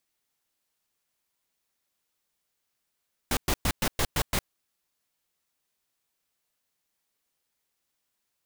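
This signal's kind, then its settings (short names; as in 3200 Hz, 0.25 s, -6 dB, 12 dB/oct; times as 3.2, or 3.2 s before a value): noise bursts pink, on 0.06 s, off 0.11 s, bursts 7, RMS -25 dBFS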